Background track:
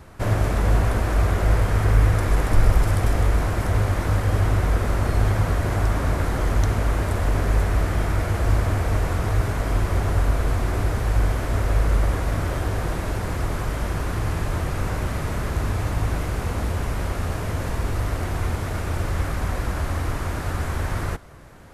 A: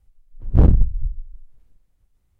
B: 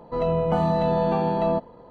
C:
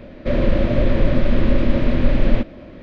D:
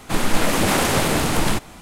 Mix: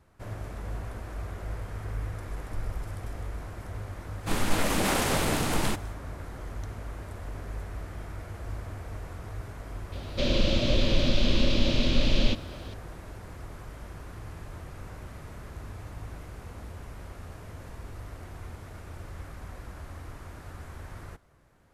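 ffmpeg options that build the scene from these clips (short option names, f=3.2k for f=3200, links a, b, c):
-filter_complex "[0:a]volume=-17dB[a];[3:a]aexciter=amount=10.5:drive=4.2:freq=2.8k[b];[4:a]atrim=end=1.81,asetpts=PTS-STARTPTS,volume=-7.5dB,afade=t=in:d=0.1,afade=t=out:st=1.71:d=0.1,adelay=183897S[c];[b]atrim=end=2.82,asetpts=PTS-STARTPTS,volume=-8dB,afade=t=in:d=0.004:c=hsin,afade=t=out:st=2.816:d=0.004:c=hsin,adelay=9920[d];[a][c][d]amix=inputs=3:normalize=0"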